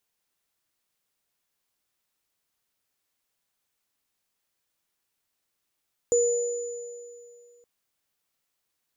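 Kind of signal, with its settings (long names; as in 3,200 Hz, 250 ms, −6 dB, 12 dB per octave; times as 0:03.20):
inharmonic partials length 1.52 s, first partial 478 Hz, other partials 6,990 Hz, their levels −6.5 dB, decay 2.42 s, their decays 2.19 s, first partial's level −18 dB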